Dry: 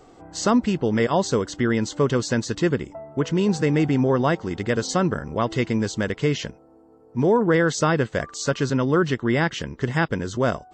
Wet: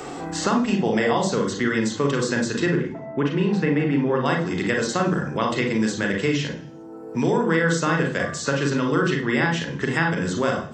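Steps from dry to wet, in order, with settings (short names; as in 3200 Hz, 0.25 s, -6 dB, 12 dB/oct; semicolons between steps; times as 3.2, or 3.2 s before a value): 0.64–1.13 bell 710 Hz +13 dB 0.6 oct; 2.66–4.26 LPF 2100 Hz 12 dB/oct; reverb RT60 0.45 s, pre-delay 36 ms, DRR 2 dB; three-band squash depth 70%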